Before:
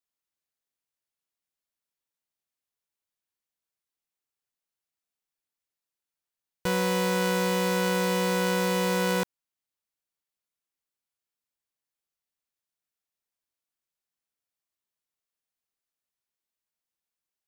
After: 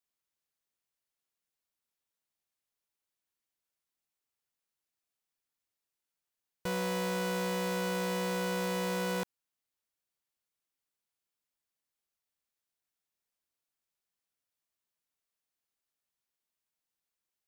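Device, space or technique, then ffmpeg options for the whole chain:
soft clipper into limiter: -af "asoftclip=type=tanh:threshold=0.0794,alimiter=level_in=1.58:limit=0.0631:level=0:latency=1,volume=0.631"

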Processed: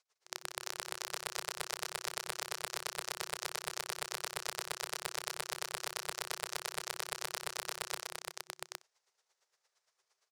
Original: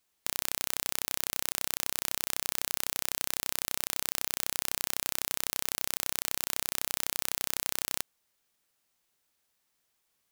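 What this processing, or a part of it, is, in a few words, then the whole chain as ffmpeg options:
helicopter radio: -af "highpass=320,lowpass=2800,aeval=exprs='val(0)*pow(10,-36*(0.5-0.5*cos(2*PI*8.7*n/s))/20)':c=same,asoftclip=type=hard:threshold=0.0473,afftfilt=real='re*(1-between(b*sr/4096,160,360))':imag='im*(1-between(b*sr/4096,160,360))':win_size=4096:overlap=0.75,highshelf=f=4200:t=q:w=1.5:g=11,aecho=1:1:55|156|305|365|457|808:0.158|0.376|0.422|0.266|0.158|0.708,volume=2.24"

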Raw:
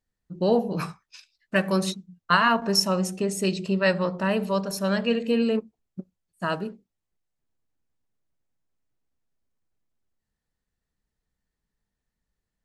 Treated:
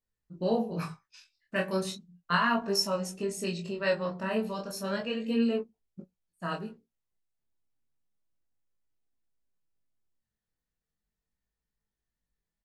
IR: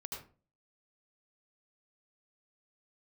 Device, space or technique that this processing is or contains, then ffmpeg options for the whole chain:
double-tracked vocal: -filter_complex "[0:a]asplit=2[s0][s1];[s1]adelay=18,volume=0.531[s2];[s0][s2]amix=inputs=2:normalize=0,flanger=delay=20:depth=7.1:speed=0.34,volume=0.596"

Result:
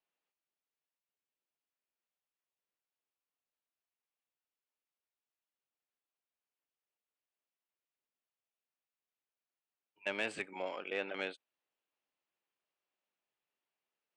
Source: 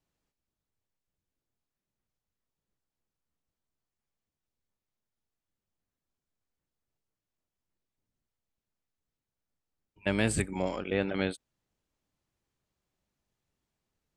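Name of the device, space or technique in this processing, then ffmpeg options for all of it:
intercom: -af "highpass=490,lowpass=3700,equalizer=f=2700:t=o:w=0.45:g=5.5,asoftclip=type=tanh:threshold=0.112,volume=0.596"

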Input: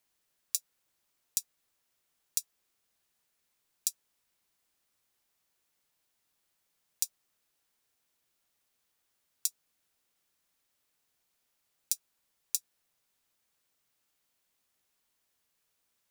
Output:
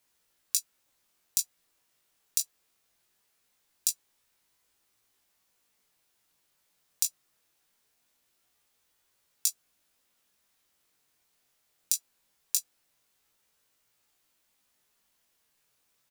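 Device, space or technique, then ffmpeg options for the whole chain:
double-tracked vocal: -filter_complex "[0:a]asplit=2[s0][s1];[s1]adelay=16,volume=0.355[s2];[s0][s2]amix=inputs=2:normalize=0,flanger=delay=18:depth=4.8:speed=0.22,volume=2.37"

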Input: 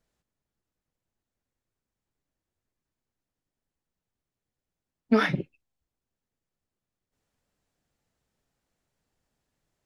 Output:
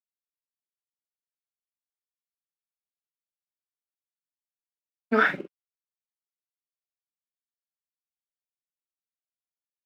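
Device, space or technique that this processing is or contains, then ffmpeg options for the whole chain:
pocket radio on a weak battery: -filter_complex "[0:a]highpass=150,highpass=280,lowpass=3300,aeval=exprs='sgn(val(0))*max(abs(val(0))-0.00211,0)':c=same,equalizer=f=1500:t=o:w=0.37:g=9,asplit=2[s0][s1];[s1]adelay=46,volume=0.447[s2];[s0][s2]amix=inputs=2:normalize=0"

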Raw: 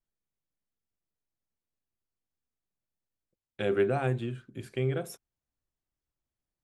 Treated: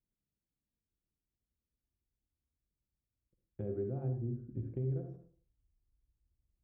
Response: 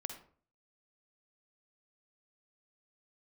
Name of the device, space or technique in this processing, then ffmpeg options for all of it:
television next door: -filter_complex "[0:a]asubboost=boost=7:cutoff=69,highpass=40,acompressor=threshold=0.01:ratio=3,lowpass=300[s0];[1:a]atrim=start_sample=2205[s1];[s0][s1]afir=irnorm=-1:irlink=0,asettb=1/sr,asplit=3[s2][s3][s4];[s2]atrim=end=4.084[s5];[s3]atrim=start=4.08:end=4.5,asetpts=PTS-STARTPTS,afade=t=in:d=0.004:c=qsin,afade=t=out:st=0.416:d=0.004:c=qsin,lowpass=1300[s6];[s4]atrim=start=4.496[s7];[s5][s6]acrossfade=d=0.004:c1=hsin:c2=qsin[s8];[s8][s7]acrossfade=d=0.004:c1=qsin:c2=hsin,volume=2.51"

